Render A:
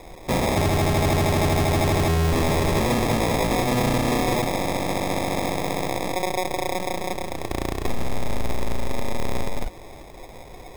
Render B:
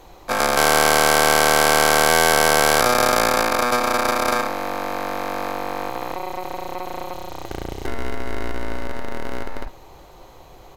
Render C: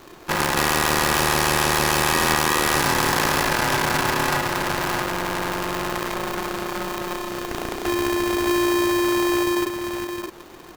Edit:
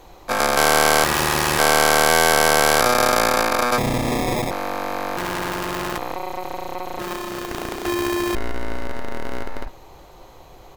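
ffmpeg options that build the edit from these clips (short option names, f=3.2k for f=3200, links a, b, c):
-filter_complex "[2:a]asplit=3[a][b][c];[1:a]asplit=5[d][e][f][g][h];[d]atrim=end=1.042[i];[a]atrim=start=1.038:end=1.592[j];[e]atrim=start=1.588:end=3.782[k];[0:a]atrim=start=3.778:end=4.512[l];[f]atrim=start=4.508:end=5.172[m];[b]atrim=start=5.168:end=5.982[n];[g]atrim=start=5.978:end=6.992[o];[c]atrim=start=6.988:end=8.352[p];[h]atrim=start=8.348[q];[i][j]acrossfade=d=0.004:c1=hsin:c2=hsin[r];[r][k]acrossfade=d=0.004:c1=hsin:c2=hsin[s];[s][l]acrossfade=d=0.004:c1=hsin:c2=hsin[t];[t][m]acrossfade=d=0.004:c1=hsin:c2=hsin[u];[u][n]acrossfade=d=0.004:c1=hsin:c2=hsin[v];[v][o]acrossfade=d=0.004:c1=hsin:c2=hsin[w];[w][p]acrossfade=d=0.004:c1=hsin:c2=hsin[x];[x][q]acrossfade=d=0.004:c1=hsin:c2=hsin"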